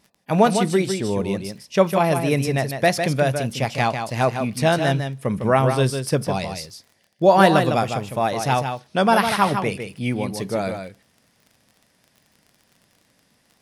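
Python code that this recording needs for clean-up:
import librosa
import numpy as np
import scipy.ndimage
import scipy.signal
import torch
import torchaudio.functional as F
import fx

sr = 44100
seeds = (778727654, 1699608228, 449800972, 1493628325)

y = fx.fix_declick_ar(x, sr, threshold=6.5)
y = fx.fix_echo_inverse(y, sr, delay_ms=154, level_db=-7.0)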